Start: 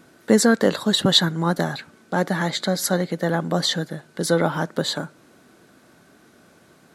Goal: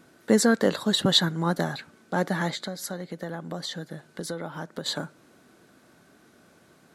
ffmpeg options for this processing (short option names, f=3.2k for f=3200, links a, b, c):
-filter_complex "[0:a]asettb=1/sr,asplit=3[a][b][c];[a]atrim=end=2.534[d];[b]atrim=start=2.53:end=4.86,asetpts=PTS-STARTPTS,afade=t=in:d=0.004:c=qsin,afade=t=out:st=2.326:d=0.004:c=qsin,acompressor=threshold=-28dB:ratio=4[e];[c]atrim=start=4.856[f];[d][e]acrossfade=d=0.004:c1=hsin:c2=qsin[g];[g][f]acrossfade=d=0.004:c1=qsin:c2=hsin,volume=-4dB"